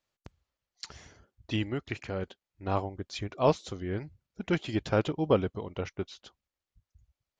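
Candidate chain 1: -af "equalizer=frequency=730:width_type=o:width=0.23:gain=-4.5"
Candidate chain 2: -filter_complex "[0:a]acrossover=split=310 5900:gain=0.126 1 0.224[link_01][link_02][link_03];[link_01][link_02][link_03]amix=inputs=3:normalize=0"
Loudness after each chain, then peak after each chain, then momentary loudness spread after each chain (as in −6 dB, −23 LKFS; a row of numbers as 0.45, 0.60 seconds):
−32.5, −34.5 LKFS; −12.0, −12.0 dBFS; 17, 18 LU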